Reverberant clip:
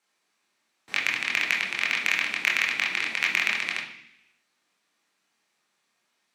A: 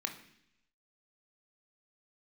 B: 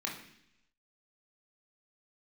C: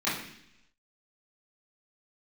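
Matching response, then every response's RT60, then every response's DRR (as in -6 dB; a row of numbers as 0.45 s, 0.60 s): B; 0.70 s, 0.70 s, 0.70 s; 4.0 dB, -2.5 dB, -12.0 dB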